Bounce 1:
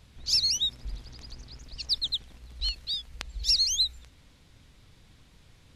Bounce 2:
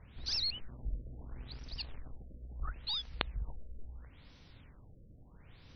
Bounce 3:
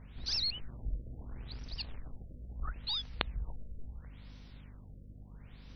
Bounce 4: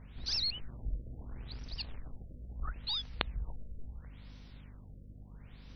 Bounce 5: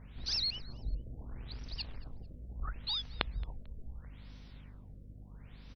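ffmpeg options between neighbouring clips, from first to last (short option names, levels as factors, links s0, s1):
-filter_complex "[0:a]acrossover=split=3400[s0][s1];[s1]acompressor=threshold=0.0158:ratio=4:attack=1:release=60[s2];[s0][s2]amix=inputs=2:normalize=0,aeval=exprs='0.224*(cos(1*acos(clip(val(0)/0.224,-1,1)))-cos(1*PI/2))+0.0794*(cos(3*acos(clip(val(0)/0.224,-1,1)))-cos(3*PI/2))+0.01*(cos(4*acos(clip(val(0)/0.224,-1,1)))-cos(4*PI/2))+0.0126*(cos(7*acos(clip(val(0)/0.224,-1,1)))-cos(7*PI/2))+0.00398*(cos(8*acos(clip(val(0)/0.224,-1,1)))-cos(8*PI/2))':c=same,afftfilt=real='re*lt(b*sr/1024,630*pow(6300/630,0.5+0.5*sin(2*PI*0.74*pts/sr)))':imag='im*lt(b*sr/1024,630*pow(6300/630,0.5+0.5*sin(2*PI*0.74*pts/sr)))':win_size=1024:overlap=0.75,volume=2.24"
-af "aeval=exprs='val(0)+0.00251*(sin(2*PI*50*n/s)+sin(2*PI*2*50*n/s)/2+sin(2*PI*3*50*n/s)/3+sin(2*PI*4*50*n/s)/4+sin(2*PI*5*50*n/s)/5)':c=same,volume=1.12"
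-af anull
-af "aecho=1:1:222|444:0.0631|0.0196" -ar 48000 -c:a libopus -b:a 64k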